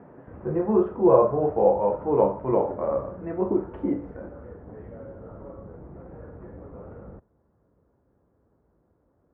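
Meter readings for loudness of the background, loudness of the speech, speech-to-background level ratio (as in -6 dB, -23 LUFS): -43.5 LUFS, -23.5 LUFS, 20.0 dB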